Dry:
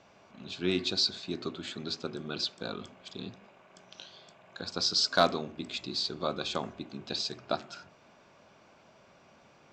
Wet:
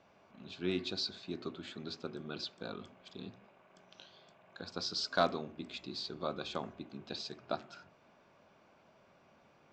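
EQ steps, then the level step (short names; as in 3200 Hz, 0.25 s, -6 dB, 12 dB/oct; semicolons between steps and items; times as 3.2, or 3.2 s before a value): high shelf 5100 Hz -10.5 dB; notches 60/120 Hz; -5.0 dB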